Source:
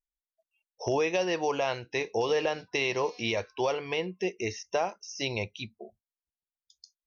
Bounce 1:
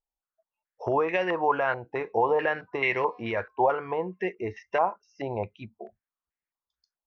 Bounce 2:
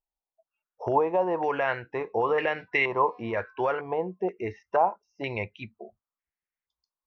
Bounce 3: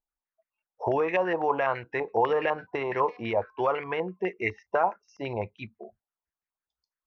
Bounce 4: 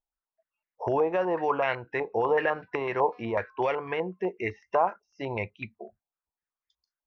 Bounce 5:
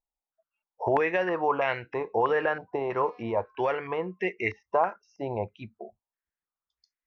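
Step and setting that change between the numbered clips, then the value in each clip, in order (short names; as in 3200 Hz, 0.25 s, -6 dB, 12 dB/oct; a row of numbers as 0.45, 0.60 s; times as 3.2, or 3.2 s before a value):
stepped low-pass, rate: 4.6, 2.1, 12, 8, 3.1 Hz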